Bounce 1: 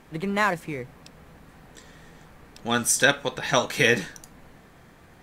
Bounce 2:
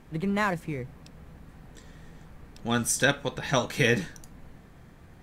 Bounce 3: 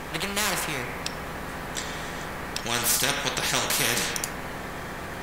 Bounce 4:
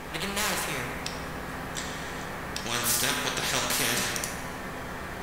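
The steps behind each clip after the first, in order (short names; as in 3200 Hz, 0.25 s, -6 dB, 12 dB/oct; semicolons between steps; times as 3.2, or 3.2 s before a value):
low shelf 230 Hz +10.5 dB; gain -5 dB
on a send at -4 dB: reverb RT60 0.60 s, pre-delay 3 ms; on the sum: spectral compressor 4:1
plate-style reverb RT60 1.8 s, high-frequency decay 0.6×, DRR 3.5 dB; gain -3.5 dB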